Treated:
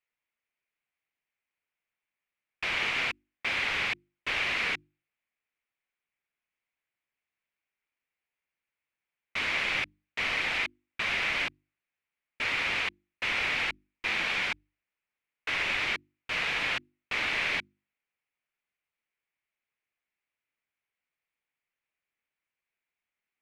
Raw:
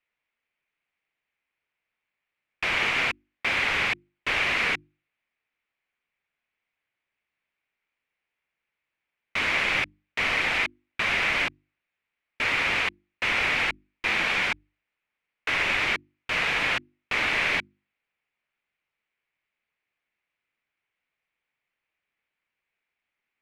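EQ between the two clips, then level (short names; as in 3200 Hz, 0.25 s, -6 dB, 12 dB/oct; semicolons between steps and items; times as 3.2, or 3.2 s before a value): dynamic EQ 4000 Hz, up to +4 dB, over -37 dBFS, Q 0.86; -6.5 dB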